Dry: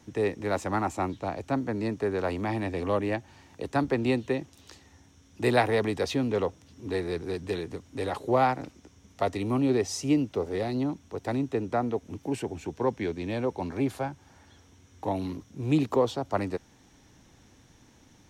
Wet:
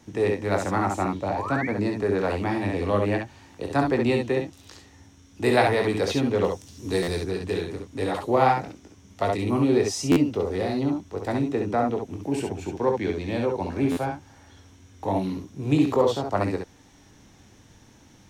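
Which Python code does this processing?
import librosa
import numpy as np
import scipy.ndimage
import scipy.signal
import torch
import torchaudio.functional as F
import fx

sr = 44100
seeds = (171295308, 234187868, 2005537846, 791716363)

p1 = fx.spec_paint(x, sr, seeds[0], shape='rise', start_s=1.22, length_s=0.45, low_hz=540.0, high_hz=2400.0, level_db=-36.0)
p2 = fx.bass_treble(p1, sr, bass_db=2, treble_db=12, at=(6.44, 7.24))
p3 = p2 + fx.room_early_taps(p2, sr, ms=(21, 59, 69), db=(-7.5, -9.0, -5.0), dry=0)
p4 = fx.buffer_glitch(p3, sr, at_s=(7.02, 10.11, 13.91), block=512, repeats=4)
y = p4 * 10.0 ** (2.0 / 20.0)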